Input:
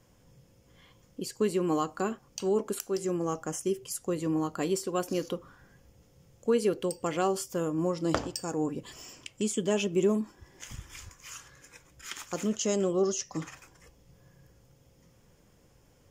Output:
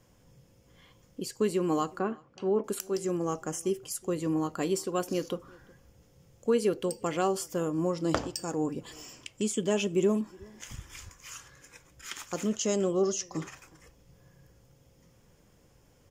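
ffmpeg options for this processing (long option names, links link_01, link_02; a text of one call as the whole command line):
ffmpeg -i in.wav -filter_complex "[0:a]asettb=1/sr,asplit=3[link_01][link_02][link_03];[link_01]atrim=end=1.994[link_04];[link_02]atrim=start=1.99:end=2.64,asetpts=PTS-STARTPTS,afade=type=in:duration=0.004:curve=qsin,afade=type=out:start_time=0.646:duration=0.004:curve=qsin,highpass=100,lowpass=2100[link_05];[link_03]atrim=start=2.636[link_06];[link_04][link_05]acrossfade=duration=0.004:curve1=hsin:curve2=qsin[link_07];[link_07][link_06]acrossfade=duration=0.004:curve1=qsin:curve2=hsin,asplit=2[link_08][link_09];[link_09]adelay=367.3,volume=-25dB,highshelf=frequency=4000:gain=-8.27[link_10];[link_08][link_10]amix=inputs=2:normalize=0" out.wav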